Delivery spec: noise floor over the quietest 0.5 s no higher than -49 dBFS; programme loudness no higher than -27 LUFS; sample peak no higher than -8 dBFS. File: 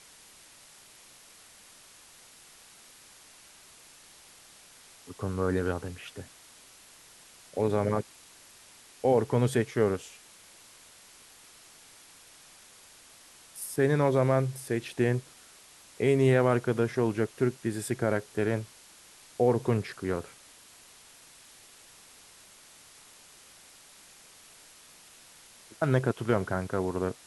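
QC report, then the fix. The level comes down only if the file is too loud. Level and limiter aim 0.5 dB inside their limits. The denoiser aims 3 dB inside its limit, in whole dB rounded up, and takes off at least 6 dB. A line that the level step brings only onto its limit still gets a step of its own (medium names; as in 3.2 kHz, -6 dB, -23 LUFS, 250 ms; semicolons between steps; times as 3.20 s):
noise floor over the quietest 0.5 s -54 dBFS: pass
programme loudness -28.5 LUFS: pass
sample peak -10.5 dBFS: pass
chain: none needed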